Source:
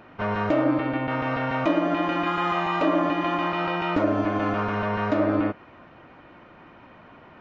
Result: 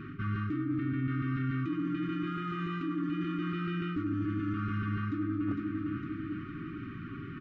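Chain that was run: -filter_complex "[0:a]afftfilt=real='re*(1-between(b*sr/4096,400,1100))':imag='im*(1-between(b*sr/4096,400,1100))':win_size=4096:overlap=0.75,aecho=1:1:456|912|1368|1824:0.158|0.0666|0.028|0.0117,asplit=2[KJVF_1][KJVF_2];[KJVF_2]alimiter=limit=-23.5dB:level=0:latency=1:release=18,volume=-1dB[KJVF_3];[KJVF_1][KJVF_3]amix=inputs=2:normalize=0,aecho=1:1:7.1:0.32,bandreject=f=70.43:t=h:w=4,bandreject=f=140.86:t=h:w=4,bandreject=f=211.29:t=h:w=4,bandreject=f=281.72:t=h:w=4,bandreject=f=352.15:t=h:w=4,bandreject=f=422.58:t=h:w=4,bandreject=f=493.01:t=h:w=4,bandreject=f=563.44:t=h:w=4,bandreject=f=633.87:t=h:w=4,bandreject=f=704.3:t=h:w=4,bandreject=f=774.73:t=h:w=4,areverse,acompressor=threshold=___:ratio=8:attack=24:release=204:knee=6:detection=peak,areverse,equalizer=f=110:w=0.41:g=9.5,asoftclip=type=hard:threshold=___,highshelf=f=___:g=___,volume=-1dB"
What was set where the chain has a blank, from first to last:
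-36dB, -23dB, 2700, -8.5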